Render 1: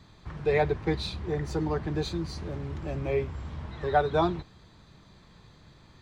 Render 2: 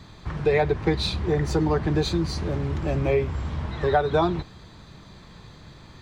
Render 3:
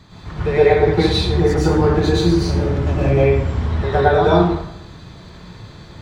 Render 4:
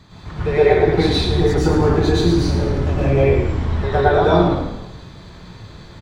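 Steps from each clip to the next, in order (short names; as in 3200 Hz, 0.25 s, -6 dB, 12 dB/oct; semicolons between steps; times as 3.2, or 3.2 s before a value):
compressor 4:1, threshold -26 dBFS, peak gain reduction 8 dB; gain +8.5 dB
plate-style reverb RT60 0.77 s, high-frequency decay 0.65×, pre-delay 95 ms, DRR -7.5 dB; gain -1 dB
frequency-shifting echo 0.109 s, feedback 51%, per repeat -48 Hz, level -9 dB; gain -1 dB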